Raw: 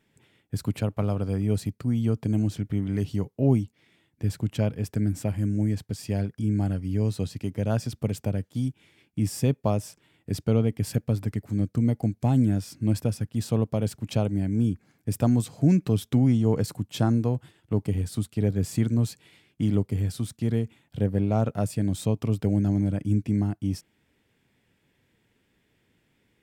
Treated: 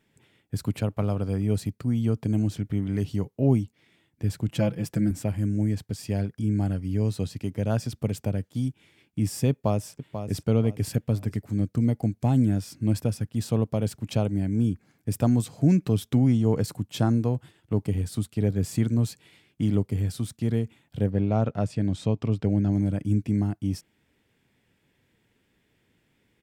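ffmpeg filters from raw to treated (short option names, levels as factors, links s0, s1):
-filter_complex "[0:a]asettb=1/sr,asplit=3[s0][s1][s2];[s0]atrim=end=4.484[s3];[s1]atrim=start=4.48:end=5.11,asetpts=PTS-STARTPTS,afade=t=in:d=0.004:c=qsin,afade=t=out:st=0.626:d=0.004:c=qsin,aecho=1:1:5.9:0.9,atrim=end_sample=27783[s4];[s2]atrim=start=5.106[s5];[s3][s4]acrossfade=d=0.004:c1=hsin:c2=qsin[s6];[s6][s5]acrossfade=d=0.004:c1=qsin:c2=hsin,asplit=2[s7][s8];[s8]afade=t=in:st=9.5:d=0.01,afade=t=out:st=10.46:d=0.01,aecho=0:1:490|980|1470:0.354813|0.106444|0.0319332[s9];[s7][s9]amix=inputs=2:normalize=0,asettb=1/sr,asplit=3[s10][s11][s12];[s10]atrim=end=21.104[s13];[s11]atrim=start=21.1:end=22.73,asetpts=PTS-STARTPTS,afade=t=in:d=0.004:c=qsin,afade=t=out:st=1.626:d=0.004:c=qsin,lowpass=5200[s14];[s12]atrim=start=22.726[s15];[s13][s14]acrossfade=d=0.004:c1=hsin:c2=qsin[s16];[s16][s15]acrossfade=d=0.004:c1=qsin:c2=hsin"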